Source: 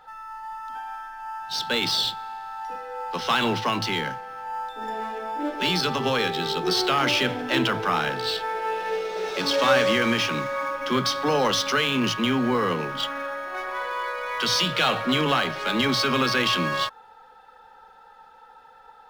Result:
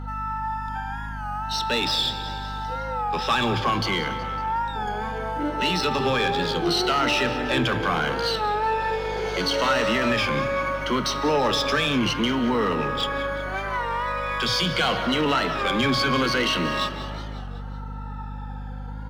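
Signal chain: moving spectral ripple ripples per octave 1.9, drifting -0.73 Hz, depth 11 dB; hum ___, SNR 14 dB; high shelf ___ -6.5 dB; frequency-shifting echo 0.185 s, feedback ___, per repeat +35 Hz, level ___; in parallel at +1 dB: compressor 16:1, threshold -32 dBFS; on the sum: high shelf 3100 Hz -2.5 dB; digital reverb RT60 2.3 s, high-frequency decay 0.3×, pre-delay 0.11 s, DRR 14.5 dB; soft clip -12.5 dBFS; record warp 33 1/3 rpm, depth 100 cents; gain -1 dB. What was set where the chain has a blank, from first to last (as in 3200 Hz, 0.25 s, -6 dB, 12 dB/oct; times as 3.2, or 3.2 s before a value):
50 Hz, 10000 Hz, 57%, -17 dB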